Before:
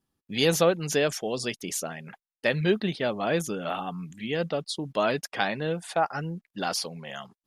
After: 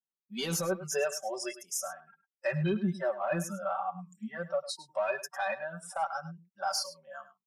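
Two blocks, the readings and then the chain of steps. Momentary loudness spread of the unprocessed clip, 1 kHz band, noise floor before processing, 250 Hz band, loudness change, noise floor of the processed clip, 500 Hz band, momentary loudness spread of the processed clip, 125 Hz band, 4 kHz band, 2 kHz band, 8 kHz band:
12 LU, −4.0 dB, below −85 dBFS, −6.5 dB, −6.0 dB, below −85 dBFS, −6.5 dB, 11 LU, −5.5 dB, −8.0 dB, −6.5 dB, −3.0 dB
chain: noise reduction from a noise print of the clip's start 27 dB
in parallel at −4 dB: soft clipping −22 dBFS, distortion −11 dB
on the sum: harmonic and percussive parts rebalanced percussive −6 dB
brickwall limiter −20 dBFS, peak gain reduction 9.5 dB
low-shelf EQ 380 Hz −4.5 dB
comb filter 5.2 ms, depth 78%
on a send: single-tap delay 103 ms −15 dB
on the sum: level −3.5 dB

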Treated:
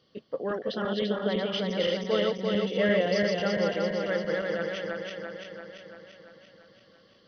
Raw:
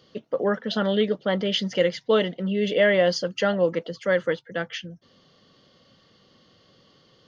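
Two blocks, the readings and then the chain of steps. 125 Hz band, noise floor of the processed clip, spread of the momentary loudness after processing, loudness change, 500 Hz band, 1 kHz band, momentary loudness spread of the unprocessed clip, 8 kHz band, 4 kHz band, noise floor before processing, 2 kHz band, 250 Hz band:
−3.5 dB, −60 dBFS, 15 LU, −4.5 dB, −4.0 dB, −3.5 dB, 11 LU, can't be measured, −4.0 dB, −60 dBFS, −4.5 dB, −3.0 dB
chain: feedback delay that plays each chunk backwards 170 ms, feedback 78%, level −1.5 dB
linear-phase brick-wall low-pass 6,200 Hz
level −8.5 dB

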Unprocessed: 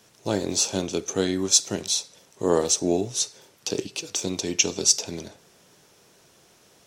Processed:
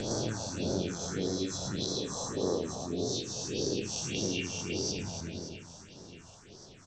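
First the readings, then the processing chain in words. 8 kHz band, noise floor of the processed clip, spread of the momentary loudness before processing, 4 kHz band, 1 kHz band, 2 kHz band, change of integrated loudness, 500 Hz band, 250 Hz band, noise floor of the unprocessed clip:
−13.5 dB, −53 dBFS, 10 LU, −9.5 dB, −7.0 dB, −7.0 dB, −10.0 dB, −7.5 dB, −6.0 dB, −58 dBFS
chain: peak hold with a rise ahead of every peak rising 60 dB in 2.40 s
treble cut that deepens with the level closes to 2,700 Hz, closed at −14.5 dBFS
Butterworth low-pass 8,000 Hz 96 dB per octave
low-shelf EQ 96 Hz +9 dB
downward compressor 3 to 1, threshold −32 dBFS, peak gain reduction 14 dB
reverse bouncing-ball delay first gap 110 ms, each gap 1.6×, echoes 5
all-pass phaser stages 4, 1.7 Hz, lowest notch 330–2,600 Hz
level −1.5 dB

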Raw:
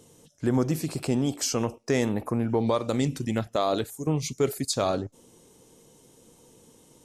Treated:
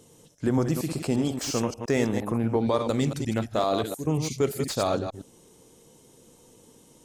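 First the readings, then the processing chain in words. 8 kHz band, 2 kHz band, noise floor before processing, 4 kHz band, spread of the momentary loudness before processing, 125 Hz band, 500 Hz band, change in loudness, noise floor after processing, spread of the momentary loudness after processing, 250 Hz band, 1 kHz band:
−2.5 dB, +1.0 dB, −58 dBFS, −1.0 dB, 4 LU, +0.5 dB, +0.5 dB, +0.5 dB, −56 dBFS, 4 LU, +0.5 dB, +1.0 dB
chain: delay that plays each chunk backwards 116 ms, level −7 dB
slew-rate limiting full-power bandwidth 180 Hz

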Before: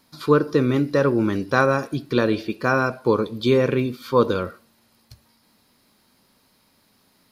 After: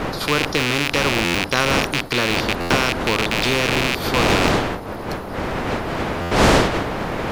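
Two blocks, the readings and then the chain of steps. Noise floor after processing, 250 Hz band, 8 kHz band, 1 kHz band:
−30 dBFS, +0.5 dB, can't be measured, +5.5 dB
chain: loose part that buzzes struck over −37 dBFS, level −12 dBFS
wind on the microphone 480 Hz −17 dBFS
buffer that repeats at 0:01.24/0:02.60/0:06.21, samples 512, times 8
every bin compressed towards the loudest bin 2 to 1
level −7 dB

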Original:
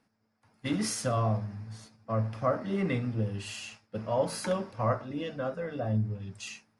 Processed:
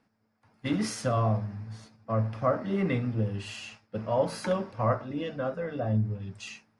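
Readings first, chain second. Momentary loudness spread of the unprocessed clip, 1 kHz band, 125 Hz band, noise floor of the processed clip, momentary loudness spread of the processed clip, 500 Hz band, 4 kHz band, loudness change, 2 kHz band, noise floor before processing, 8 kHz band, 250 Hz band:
11 LU, +2.0 dB, +2.0 dB, −72 dBFS, 12 LU, +2.0 dB, −1.0 dB, +2.0 dB, +1.0 dB, −74 dBFS, −4.5 dB, +2.0 dB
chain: high-shelf EQ 6,600 Hz −11 dB
level +2 dB

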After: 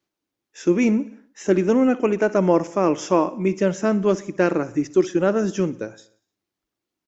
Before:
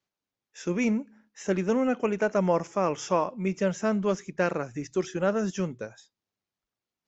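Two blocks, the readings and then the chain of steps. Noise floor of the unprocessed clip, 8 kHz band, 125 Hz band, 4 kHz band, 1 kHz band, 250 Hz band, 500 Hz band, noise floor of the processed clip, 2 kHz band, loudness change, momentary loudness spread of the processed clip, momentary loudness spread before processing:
below −85 dBFS, can't be measured, +5.5 dB, +4.0 dB, +4.5 dB, +8.0 dB, +7.0 dB, −85 dBFS, +4.0 dB, +7.0 dB, 7 LU, 8 LU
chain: parametric band 320 Hz +11.5 dB 0.51 octaves
on a send: repeating echo 61 ms, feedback 59%, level −19.5 dB
on the sum: level +4 dB

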